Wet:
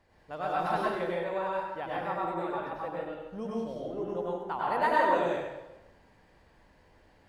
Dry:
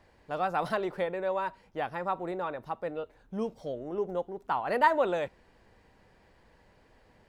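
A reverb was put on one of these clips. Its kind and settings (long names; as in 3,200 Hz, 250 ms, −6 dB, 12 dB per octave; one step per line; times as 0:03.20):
dense smooth reverb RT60 1 s, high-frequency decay 0.85×, pre-delay 85 ms, DRR −5.5 dB
level −6 dB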